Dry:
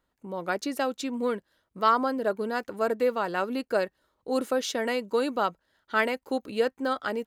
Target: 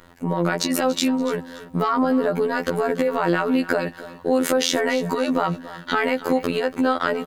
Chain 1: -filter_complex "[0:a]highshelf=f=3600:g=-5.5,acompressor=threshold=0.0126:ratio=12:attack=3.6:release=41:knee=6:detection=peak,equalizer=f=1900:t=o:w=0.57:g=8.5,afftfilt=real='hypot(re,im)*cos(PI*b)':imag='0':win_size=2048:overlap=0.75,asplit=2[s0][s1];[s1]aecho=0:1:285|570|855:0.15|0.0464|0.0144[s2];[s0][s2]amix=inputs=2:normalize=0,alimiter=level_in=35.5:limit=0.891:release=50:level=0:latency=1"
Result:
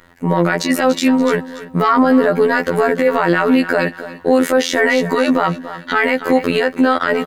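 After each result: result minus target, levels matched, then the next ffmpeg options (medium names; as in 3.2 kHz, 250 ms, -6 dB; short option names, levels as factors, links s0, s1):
compression: peak gain reduction -8.5 dB; 2 kHz band +2.0 dB
-filter_complex "[0:a]highshelf=f=3600:g=-5.5,acompressor=threshold=0.00447:ratio=12:attack=3.6:release=41:knee=6:detection=peak,equalizer=f=1900:t=o:w=0.57:g=8.5,afftfilt=real='hypot(re,im)*cos(PI*b)':imag='0':win_size=2048:overlap=0.75,asplit=2[s0][s1];[s1]aecho=0:1:285|570|855:0.15|0.0464|0.0144[s2];[s0][s2]amix=inputs=2:normalize=0,alimiter=level_in=35.5:limit=0.891:release=50:level=0:latency=1"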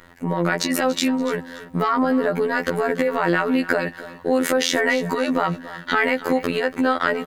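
2 kHz band +3.5 dB
-filter_complex "[0:a]highshelf=f=3600:g=-5.5,acompressor=threshold=0.00447:ratio=12:attack=3.6:release=41:knee=6:detection=peak,equalizer=f=1900:t=o:w=0.57:g=2,afftfilt=real='hypot(re,im)*cos(PI*b)':imag='0':win_size=2048:overlap=0.75,asplit=2[s0][s1];[s1]aecho=0:1:285|570|855:0.15|0.0464|0.0144[s2];[s0][s2]amix=inputs=2:normalize=0,alimiter=level_in=35.5:limit=0.891:release=50:level=0:latency=1"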